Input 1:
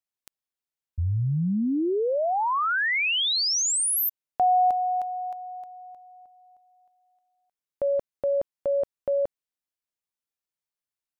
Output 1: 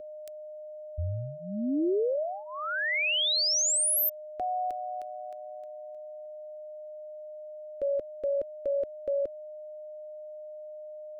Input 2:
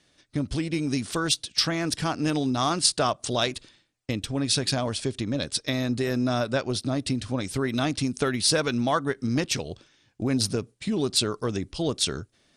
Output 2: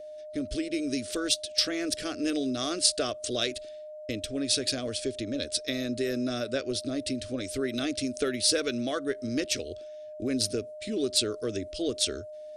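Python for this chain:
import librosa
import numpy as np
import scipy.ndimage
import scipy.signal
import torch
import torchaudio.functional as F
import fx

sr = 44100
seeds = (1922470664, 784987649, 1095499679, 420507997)

y = x + 10.0 ** (-34.0 / 20.0) * np.sin(2.0 * np.pi * 610.0 * np.arange(len(x)) / sr)
y = fx.fixed_phaser(y, sr, hz=380.0, stages=4)
y = y * librosa.db_to_amplitude(-1.5)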